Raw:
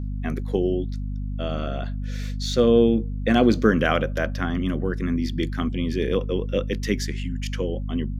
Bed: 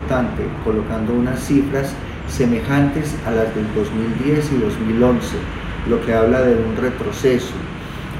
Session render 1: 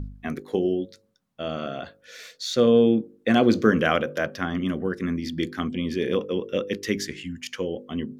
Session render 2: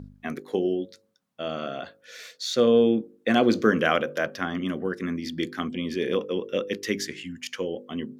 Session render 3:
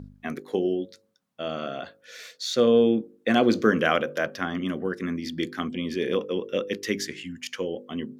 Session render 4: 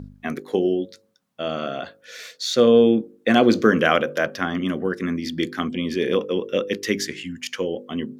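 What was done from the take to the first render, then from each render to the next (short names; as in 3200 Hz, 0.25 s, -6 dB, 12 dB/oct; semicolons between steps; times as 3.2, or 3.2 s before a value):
de-hum 50 Hz, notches 11
HPF 220 Hz 6 dB/oct
nothing audible
gain +4.5 dB; limiter -3 dBFS, peak gain reduction 1 dB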